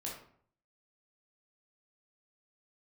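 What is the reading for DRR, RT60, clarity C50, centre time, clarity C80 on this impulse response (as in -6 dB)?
-3.5 dB, 0.55 s, 4.0 dB, 37 ms, 8.5 dB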